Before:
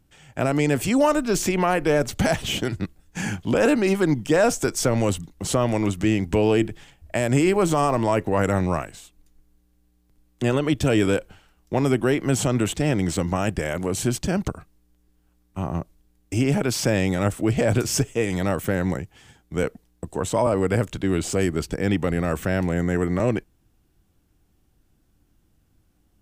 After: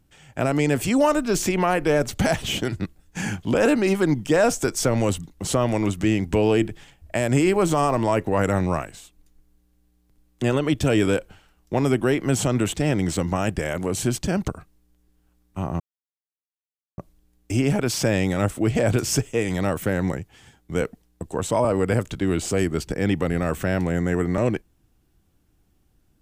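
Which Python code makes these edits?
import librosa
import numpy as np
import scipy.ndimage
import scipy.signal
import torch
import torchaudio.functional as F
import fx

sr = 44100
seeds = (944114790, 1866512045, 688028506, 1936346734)

y = fx.edit(x, sr, fx.insert_silence(at_s=15.8, length_s=1.18), tone=tone)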